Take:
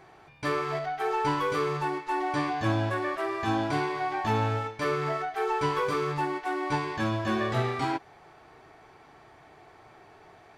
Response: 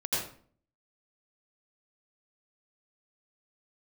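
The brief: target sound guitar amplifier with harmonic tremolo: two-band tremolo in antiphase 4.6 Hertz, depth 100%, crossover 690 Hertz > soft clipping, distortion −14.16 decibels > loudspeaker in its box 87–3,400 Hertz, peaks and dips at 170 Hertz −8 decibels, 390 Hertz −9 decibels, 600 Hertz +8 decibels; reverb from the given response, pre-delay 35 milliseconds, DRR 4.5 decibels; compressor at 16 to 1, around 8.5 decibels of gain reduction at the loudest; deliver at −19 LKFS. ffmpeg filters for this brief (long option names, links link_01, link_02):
-filter_complex "[0:a]acompressor=threshold=-31dB:ratio=16,asplit=2[link_01][link_02];[1:a]atrim=start_sample=2205,adelay=35[link_03];[link_02][link_03]afir=irnorm=-1:irlink=0,volume=-11.5dB[link_04];[link_01][link_04]amix=inputs=2:normalize=0,acrossover=split=690[link_05][link_06];[link_05]aeval=exprs='val(0)*(1-1/2+1/2*cos(2*PI*4.6*n/s))':channel_layout=same[link_07];[link_06]aeval=exprs='val(0)*(1-1/2-1/2*cos(2*PI*4.6*n/s))':channel_layout=same[link_08];[link_07][link_08]amix=inputs=2:normalize=0,asoftclip=threshold=-33.5dB,highpass=87,equalizer=frequency=170:width_type=q:width=4:gain=-8,equalizer=frequency=390:width_type=q:width=4:gain=-9,equalizer=frequency=600:width_type=q:width=4:gain=8,lowpass=frequency=3400:width=0.5412,lowpass=frequency=3400:width=1.3066,volume=22dB"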